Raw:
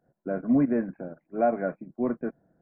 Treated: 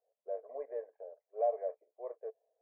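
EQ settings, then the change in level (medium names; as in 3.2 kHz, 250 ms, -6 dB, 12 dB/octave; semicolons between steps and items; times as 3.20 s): boxcar filter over 31 samples; rippled Chebyshev high-pass 430 Hz, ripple 3 dB; distance through air 410 m; -2.0 dB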